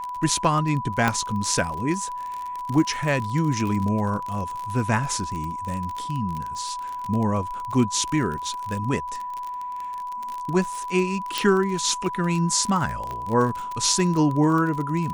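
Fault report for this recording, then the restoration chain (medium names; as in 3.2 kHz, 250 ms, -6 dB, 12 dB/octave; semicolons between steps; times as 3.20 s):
crackle 41 per s -27 dBFS
whine 990 Hz -29 dBFS
1.08 s: pop -7 dBFS
11.38 s: pop
13.11 s: pop -19 dBFS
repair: de-click; band-stop 990 Hz, Q 30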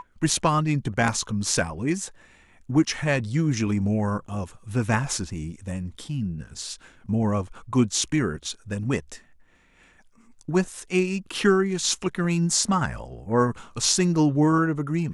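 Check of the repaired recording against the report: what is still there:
1.08 s: pop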